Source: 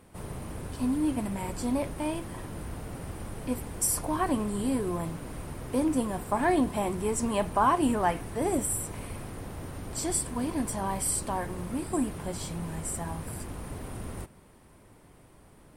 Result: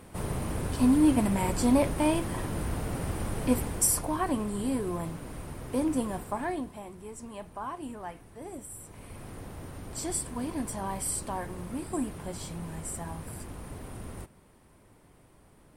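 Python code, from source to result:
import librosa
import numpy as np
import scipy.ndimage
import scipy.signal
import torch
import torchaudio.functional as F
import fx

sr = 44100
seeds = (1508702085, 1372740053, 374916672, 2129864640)

y = fx.gain(x, sr, db=fx.line((3.61, 6.0), (4.17, -1.5), (6.15, -1.5), (6.83, -14.0), (8.7, -14.0), (9.31, -3.0)))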